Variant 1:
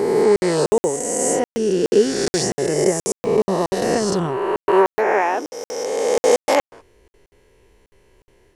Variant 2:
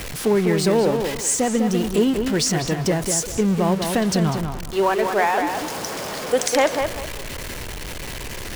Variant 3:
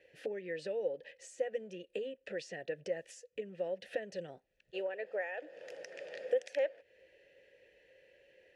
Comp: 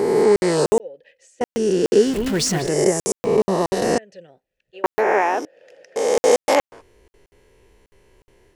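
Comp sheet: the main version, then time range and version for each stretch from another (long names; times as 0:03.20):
1
0:00.80–0:01.41: punch in from 3
0:02.09–0:02.65: punch in from 2, crossfade 0.16 s
0:03.98–0:04.84: punch in from 3
0:05.45–0:05.96: punch in from 3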